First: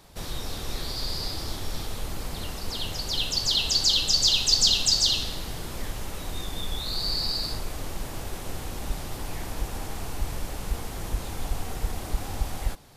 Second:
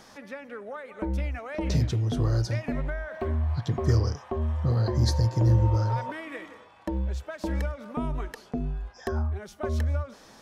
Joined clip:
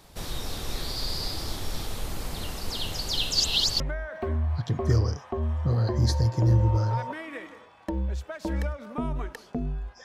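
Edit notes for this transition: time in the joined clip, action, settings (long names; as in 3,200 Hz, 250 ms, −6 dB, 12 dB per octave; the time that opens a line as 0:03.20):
first
0:03.35–0:03.80: reverse
0:03.80: continue with second from 0:02.79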